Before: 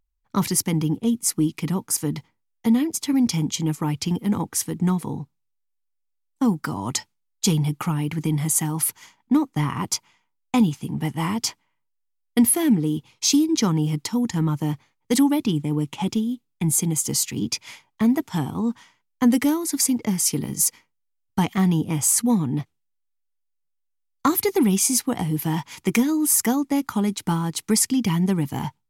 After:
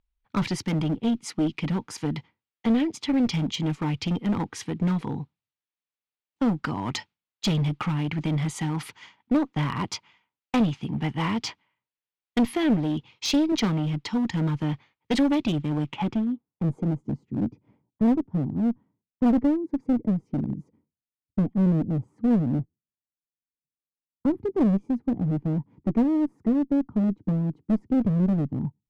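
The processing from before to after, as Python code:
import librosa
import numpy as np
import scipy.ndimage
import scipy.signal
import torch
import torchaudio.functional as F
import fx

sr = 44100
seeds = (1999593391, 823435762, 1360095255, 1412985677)

y = fx.filter_sweep_lowpass(x, sr, from_hz=3200.0, to_hz=280.0, start_s=15.81, end_s=17.08, q=1.3)
y = fx.clip_asym(y, sr, top_db=-21.0, bottom_db=-12.0)
y = fx.band_widen(y, sr, depth_pct=40, at=(13.52, 14.06))
y = F.gain(torch.from_numpy(y), -1.0).numpy()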